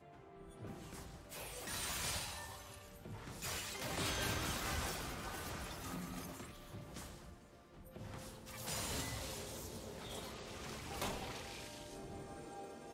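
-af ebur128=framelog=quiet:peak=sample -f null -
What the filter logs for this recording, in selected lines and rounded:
Integrated loudness:
  I:         -44.1 LUFS
  Threshold: -54.4 LUFS
Loudness range:
  LRA:         6.4 LU
  Threshold: -64.0 LUFS
  LRA low:   -47.7 LUFS
  LRA high:  -41.3 LUFS
Sample peak:
  Peak:      -26.4 dBFS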